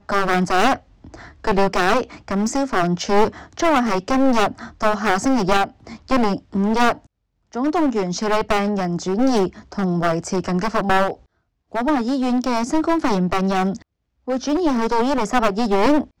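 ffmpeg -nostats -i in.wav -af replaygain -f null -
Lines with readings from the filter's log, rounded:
track_gain = +0.7 dB
track_peak = 0.486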